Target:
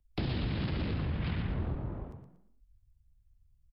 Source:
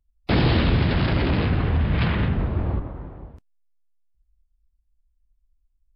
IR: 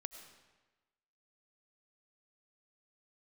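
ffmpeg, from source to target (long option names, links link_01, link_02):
-filter_complex "[0:a]atempo=1.6,acompressor=threshold=-34dB:ratio=2,asplit=2[link_01][link_02];[link_02]asplit=4[link_03][link_04][link_05][link_06];[link_03]adelay=118,afreqshift=44,volume=-8dB[link_07];[link_04]adelay=236,afreqshift=88,volume=-17.9dB[link_08];[link_05]adelay=354,afreqshift=132,volume=-27.8dB[link_09];[link_06]adelay=472,afreqshift=176,volume=-37.7dB[link_10];[link_07][link_08][link_09][link_10]amix=inputs=4:normalize=0[link_11];[link_01][link_11]amix=inputs=2:normalize=0,acrossover=split=390|2800[link_12][link_13][link_14];[link_12]acompressor=threshold=-30dB:ratio=4[link_15];[link_13]acompressor=threshold=-45dB:ratio=4[link_16];[link_14]acompressor=threshold=-45dB:ratio=4[link_17];[link_15][link_16][link_17]amix=inputs=3:normalize=0"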